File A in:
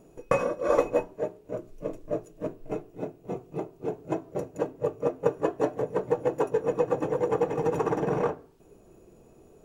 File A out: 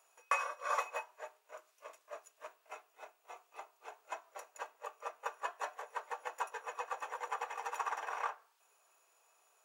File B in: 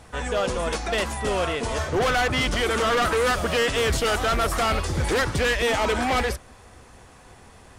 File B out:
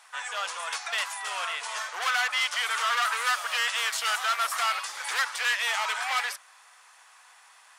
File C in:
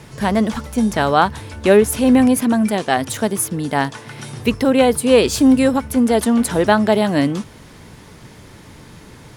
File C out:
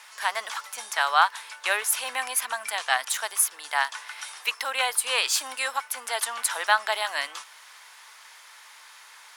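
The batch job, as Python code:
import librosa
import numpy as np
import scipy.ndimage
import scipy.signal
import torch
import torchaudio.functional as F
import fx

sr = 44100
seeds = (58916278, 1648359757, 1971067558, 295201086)

y = scipy.signal.sosfilt(scipy.signal.butter(4, 960.0, 'highpass', fs=sr, output='sos'), x)
y = F.gain(torch.from_numpy(y), -1.0).numpy()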